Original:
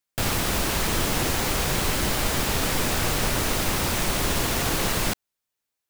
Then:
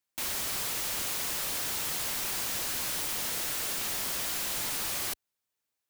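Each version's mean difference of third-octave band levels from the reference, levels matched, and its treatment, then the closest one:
6.0 dB: high-pass filter 44 Hz 6 dB per octave
in parallel at −1 dB: brickwall limiter −19.5 dBFS, peak gain reduction 8 dB
on the sum: wrap-around overflow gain 20.5 dB
level −7.5 dB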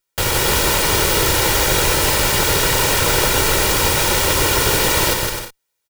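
2.5 dB: lower of the sound and its delayed copy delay 2.1 ms
low-shelf EQ 74 Hz −6.5 dB
on a send: bouncing-ball delay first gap 160 ms, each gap 0.6×, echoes 5
on the sum: level +8.5 dB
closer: second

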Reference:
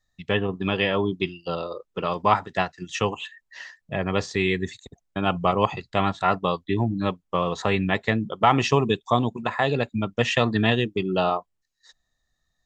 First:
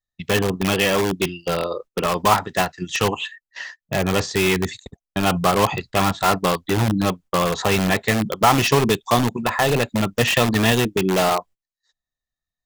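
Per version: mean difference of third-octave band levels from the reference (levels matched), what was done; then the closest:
8.5 dB: noise gate −44 dBFS, range −22 dB
in parallel at −3 dB: wrap-around overflow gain 19.5 dB
on the sum: level +2.5 dB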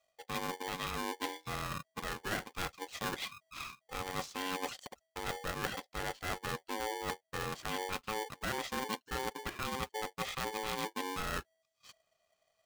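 17.5 dB: reversed playback
downward compressor 5 to 1, threshold −32 dBFS, peak gain reduction 17.5 dB
reversed playback
ring modulator with a square carrier 650 Hz
level −3.5 dB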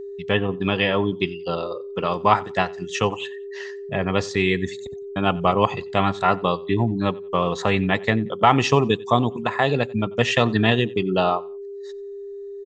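1.5 dB: steady tone 400 Hz −34 dBFS
repeating echo 91 ms, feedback 28%, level −23.5 dB
level +2.5 dB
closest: third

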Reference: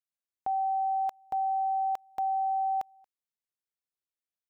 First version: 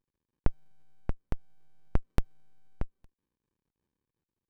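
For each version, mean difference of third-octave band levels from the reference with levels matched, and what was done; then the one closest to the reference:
7.5 dB: shaped tremolo triangle 0.61 Hz, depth 55%
windowed peak hold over 65 samples
level +14.5 dB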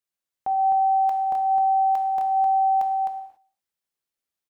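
2.0 dB: single-tap delay 259 ms −4.5 dB
reverb whose tail is shaped and stops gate 310 ms falling, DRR 4 dB
level +3.5 dB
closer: second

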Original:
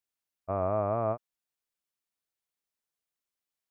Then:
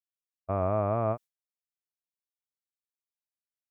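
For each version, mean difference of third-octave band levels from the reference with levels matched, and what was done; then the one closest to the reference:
1.0 dB: high-shelf EQ 2,000 Hz +11.5 dB
noise gate with hold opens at −31 dBFS
low-shelf EQ 370 Hz +7.5 dB
level −2.5 dB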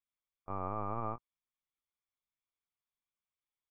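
2.5 dB: high-pass filter 100 Hz 24 dB per octave
comb filter 0.9 ms, depth 74%
linear-prediction vocoder at 8 kHz pitch kept
level −7 dB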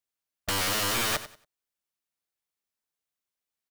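19.5 dB: leveller curve on the samples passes 3
wrap-around overflow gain 27 dB
repeating echo 93 ms, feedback 25%, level −14 dB
level +5.5 dB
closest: first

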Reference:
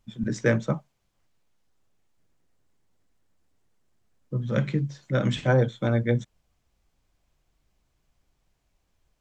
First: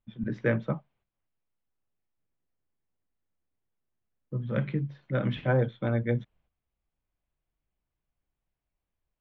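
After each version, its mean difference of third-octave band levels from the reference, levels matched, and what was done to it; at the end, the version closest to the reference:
1.5 dB: noise gate −60 dBFS, range −10 dB
low-pass filter 3,200 Hz 24 dB per octave
level −4 dB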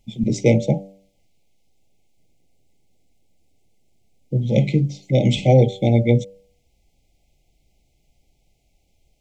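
3.5 dB: linear-phase brick-wall band-stop 870–2,000 Hz
hum removal 97.08 Hz, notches 15
level +8 dB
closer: first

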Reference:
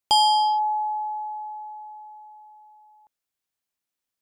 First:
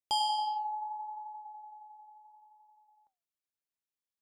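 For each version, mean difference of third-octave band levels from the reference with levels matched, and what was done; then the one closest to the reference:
1.0 dB: flanger 0.7 Hz, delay 6.3 ms, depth 9.5 ms, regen −78%
level −7.5 dB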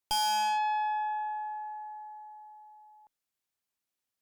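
4.0 dB: tube saturation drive 27 dB, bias 0.5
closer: first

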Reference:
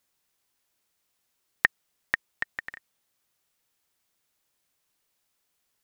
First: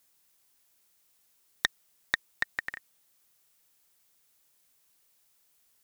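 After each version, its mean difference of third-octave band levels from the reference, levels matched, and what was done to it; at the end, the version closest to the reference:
6.0 dB: high-shelf EQ 6,000 Hz +8 dB
saturating transformer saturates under 2,900 Hz
level +2 dB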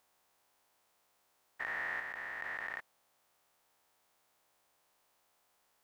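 11.0 dB: spectrum averaged block by block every 400 ms
parametric band 800 Hz +12 dB 1.9 octaves
level +1 dB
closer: first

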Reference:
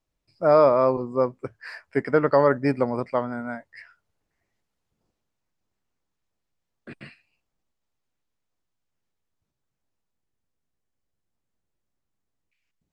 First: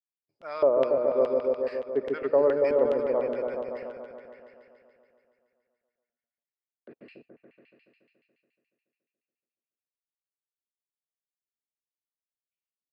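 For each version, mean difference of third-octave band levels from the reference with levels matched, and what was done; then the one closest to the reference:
7.5 dB: noise gate with hold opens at −52 dBFS
auto-filter band-pass square 2.4 Hz 470–3,000 Hz
on a send: echo whose low-pass opens from repeat to repeat 142 ms, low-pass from 400 Hz, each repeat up 1 octave, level 0 dB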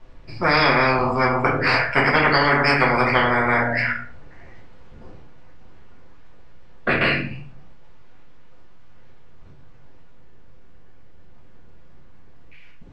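12.0 dB: low-pass filter 2,800 Hz 12 dB per octave
rectangular room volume 31 cubic metres, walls mixed, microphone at 0.89 metres
every bin compressed towards the loudest bin 10 to 1
level −1 dB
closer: first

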